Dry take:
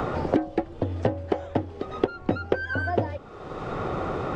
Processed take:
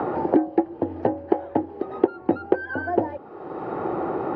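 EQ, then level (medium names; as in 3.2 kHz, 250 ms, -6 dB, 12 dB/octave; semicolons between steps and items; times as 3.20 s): cabinet simulation 310–5000 Hz, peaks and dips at 340 Hz +7 dB, 850 Hz +10 dB, 1.7 kHz +5 dB; tilt EQ -4 dB/octave; band-stop 3.5 kHz, Q 11; -3.0 dB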